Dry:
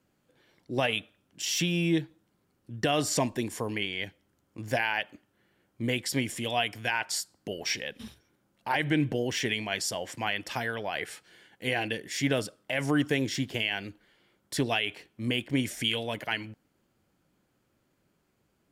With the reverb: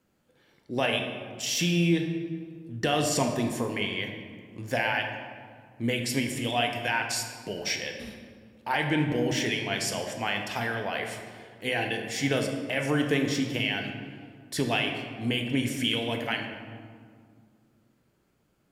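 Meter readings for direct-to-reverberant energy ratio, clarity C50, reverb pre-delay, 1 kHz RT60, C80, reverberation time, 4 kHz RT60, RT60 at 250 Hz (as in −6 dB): 3.0 dB, 5.5 dB, 4 ms, 1.9 s, 7.0 dB, 2.0 s, 1.1 s, 2.9 s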